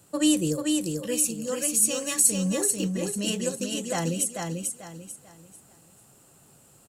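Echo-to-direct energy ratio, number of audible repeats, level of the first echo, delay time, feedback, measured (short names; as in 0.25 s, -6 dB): -3.5 dB, 4, -4.0 dB, 0.442 s, 31%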